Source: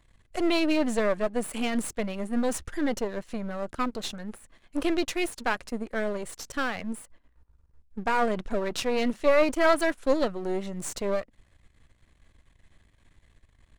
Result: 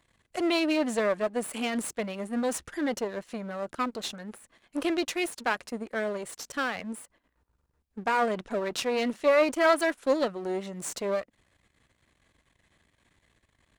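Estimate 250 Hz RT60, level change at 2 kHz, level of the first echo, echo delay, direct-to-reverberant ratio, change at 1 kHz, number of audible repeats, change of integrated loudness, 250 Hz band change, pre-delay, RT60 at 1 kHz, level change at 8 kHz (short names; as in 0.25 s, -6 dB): none, 0.0 dB, none, none, none, 0.0 dB, none, -1.0 dB, -2.0 dB, none, none, 0.0 dB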